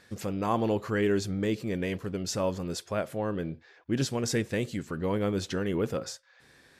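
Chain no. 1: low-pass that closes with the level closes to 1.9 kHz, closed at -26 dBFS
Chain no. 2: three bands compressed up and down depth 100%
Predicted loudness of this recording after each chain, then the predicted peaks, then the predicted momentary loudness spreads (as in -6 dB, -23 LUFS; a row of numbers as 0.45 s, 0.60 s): -31.0 LUFS, -30.0 LUFS; -15.0 dBFS, -13.5 dBFS; 8 LU, 6 LU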